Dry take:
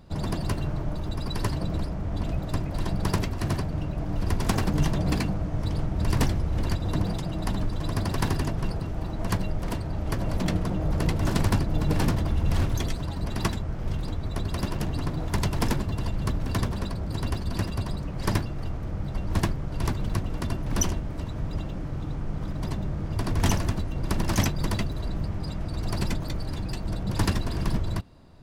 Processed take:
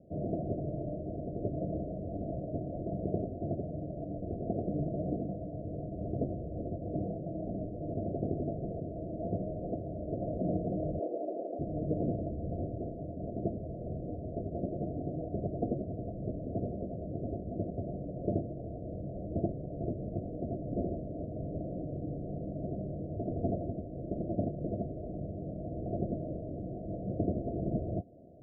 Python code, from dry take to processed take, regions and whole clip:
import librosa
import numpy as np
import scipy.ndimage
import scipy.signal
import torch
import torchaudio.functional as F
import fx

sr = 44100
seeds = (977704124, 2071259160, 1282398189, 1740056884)

y = fx.chain(x, sr, fx.highpass(hz=300.0, slope=24),
    fx.tilt_eq(slope=4.0),
    fx.env_flatten(amount_pct=50), at=(10.99, 11.59))
y = scipy.signal.sosfilt(scipy.signal.cheby1(10, 1.0, 710.0, 'lowpass', fs=sr, output='sos'), y)
y = fx.rider(y, sr, range_db=10, speed_s=2.0)
y = fx.highpass(y, sr, hz=520.0, slope=6)
y = y * librosa.db_to_amplitude(3.0)